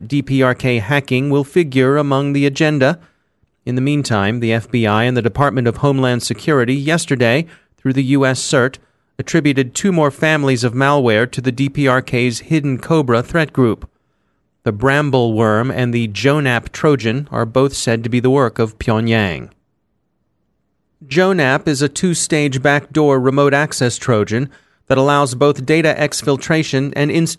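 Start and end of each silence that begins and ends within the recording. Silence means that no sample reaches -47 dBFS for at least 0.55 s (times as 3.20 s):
13.88–14.65 s
19.53–21.01 s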